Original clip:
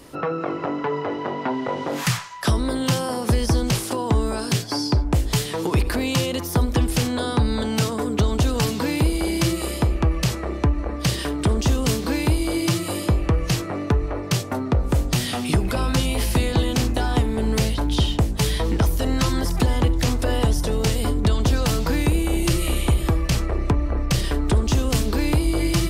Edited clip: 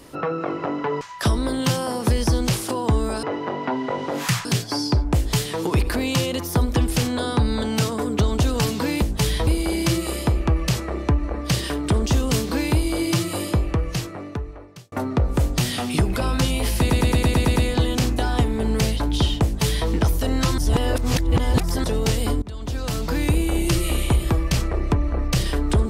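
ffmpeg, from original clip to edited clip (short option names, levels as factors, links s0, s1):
-filter_complex "[0:a]asplit=17[s0][s1][s2][s3][s4][s5][s6][s7][s8][s9][s10][s11][s12][s13][s14][s15][s16];[s0]atrim=end=1.012[s17];[s1]atrim=start=2.228:end=4.452[s18];[s2]atrim=start=1.008:end=2.232[s19];[s3]atrim=start=4.448:end=9.022[s20];[s4]atrim=start=18.218:end=18.672[s21];[s5]atrim=start=9.018:end=14.47,asetpts=PTS-STARTPTS,afade=t=out:st=3.942:d=1.51[s22];[s6]atrim=start=14.47:end=16.452,asetpts=PTS-STARTPTS,afade=t=in:d=0.004:c=hsin[s23];[s7]atrim=start=16.338:end=16.452[s24];[s8]atrim=start=16.338:end=16.452[s25];[s9]atrim=start=16.338:end=16.452[s26];[s10]atrim=start=16.338:end=16.452[s27];[s11]atrim=start=16.338:end=16.452[s28];[s12]atrim=start=16.338:end=16.452[s29];[s13]atrim=start=16.338:end=19.362[s30];[s14]atrim=start=19.358:end=20.622,asetpts=PTS-STARTPTS,areverse[s31];[s15]atrim=start=20.618:end=21.2,asetpts=PTS-STARTPTS,afade=t=out:st=0.578:d=0.004:c=hsin:silence=0.0841395[s32];[s16]atrim=start=21.2,asetpts=PTS-STARTPTS,afade=t=in:d=0.9:silence=0.0841395[s33];[s17][s18]acrossfade=d=0.004:c1=hsin:c2=hsin[s34];[s34][s19]acrossfade=d=0.004:c1=hsin:c2=hsin[s35];[s35][s20]acrossfade=d=0.004:c1=hsin:c2=hsin[s36];[s36][s21]acrossfade=d=0.004:c1=hsin:c2=hsin[s37];[s22][s23]concat=n=2:v=0:a=1[s38];[s37][s38]acrossfade=d=0.004:c1=hsin:c2=hsin[s39];[s39][s24]acrossfade=d=0.004:c1=hsin:c2=hsin[s40];[s40][s25]acrossfade=d=0.004:c1=hsin:c2=hsin[s41];[s41][s26]acrossfade=d=0.004:c1=hsin:c2=hsin[s42];[s42][s27]acrossfade=d=0.004:c1=hsin:c2=hsin[s43];[s43][s28]acrossfade=d=0.004:c1=hsin:c2=hsin[s44];[s44][s29]acrossfade=d=0.004:c1=hsin:c2=hsin[s45];[s45][s30]acrossfade=d=0.004:c1=hsin:c2=hsin[s46];[s46][s31]acrossfade=d=0.004:c1=hsin:c2=hsin[s47];[s32][s33]concat=n=2:v=0:a=1[s48];[s47][s48]acrossfade=d=0.004:c1=hsin:c2=hsin"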